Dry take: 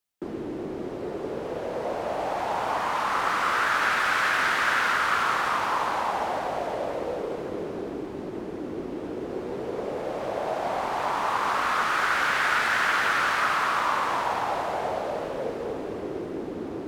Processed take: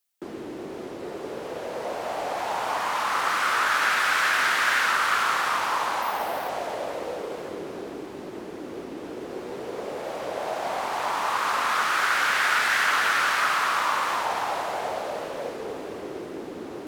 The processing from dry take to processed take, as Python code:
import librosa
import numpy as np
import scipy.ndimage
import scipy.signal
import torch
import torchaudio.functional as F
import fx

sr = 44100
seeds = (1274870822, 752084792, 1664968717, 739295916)

y = fx.tilt_eq(x, sr, slope=2.0)
y = fx.resample_bad(y, sr, factor=3, down='filtered', up='hold', at=(6.02, 6.49))
y = fx.record_warp(y, sr, rpm=45.0, depth_cents=100.0)